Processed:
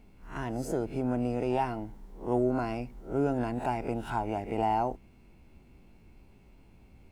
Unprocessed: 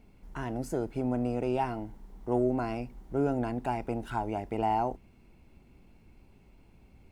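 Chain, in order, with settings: spectral swells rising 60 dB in 0.32 s

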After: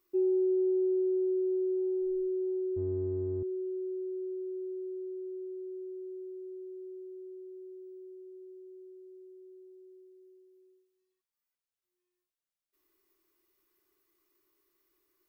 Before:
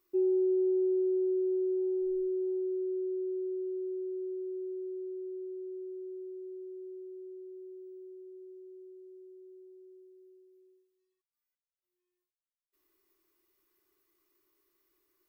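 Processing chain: 2.76–3.43 octaver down 2 oct, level +1 dB

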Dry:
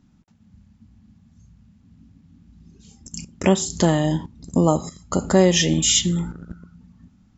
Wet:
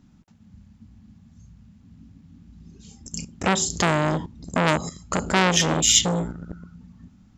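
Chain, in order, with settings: core saturation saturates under 2100 Hz; gain +2.5 dB

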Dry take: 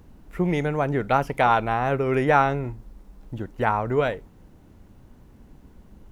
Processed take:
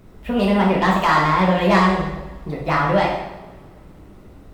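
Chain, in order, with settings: soft clip -14 dBFS, distortion -15 dB; speed mistake 33 rpm record played at 45 rpm; on a send: tape echo 69 ms, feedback 80%, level -10.5 dB, low-pass 1200 Hz; on the sum: two-slope reverb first 0.86 s, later 3.1 s, from -26 dB, DRR -3.5 dB; gain +1 dB

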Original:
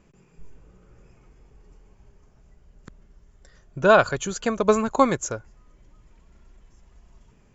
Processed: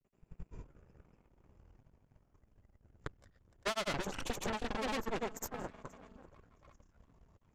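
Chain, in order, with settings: overloaded stage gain 20 dB; high shelf 2500 Hz -9.5 dB; notch 420 Hz, Q 12; echo with dull and thin repeats by turns 0.371 s, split 820 Hz, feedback 53%, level -14 dB; added harmonics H 5 -34 dB, 7 -15 dB, 8 -7 dB, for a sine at -13 dBFS; grains, spray 0.228 s, pitch spread up and down by 0 st; compressor 10:1, threshold -35 dBFS, peak gain reduction 17.5 dB; gain +1.5 dB

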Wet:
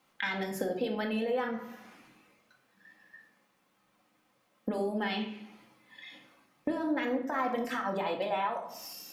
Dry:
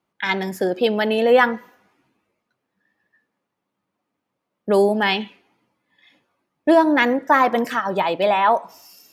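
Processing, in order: limiter -11.5 dBFS, peak gain reduction 7.5 dB; compressor 6:1, threshold -33 dBFS, peak gain reduction 16 dB; shoebox room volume 970 m³, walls furnished, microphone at 2.1 m; mismatched tape noise reduction encoder only

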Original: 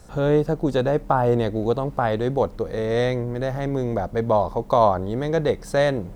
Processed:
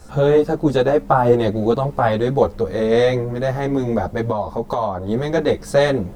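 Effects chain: 4.28–5.08 compressor 5:1, threshold -23 dBFS, peak gain reduction 11 dB; ensemble effect; gain +8 dB

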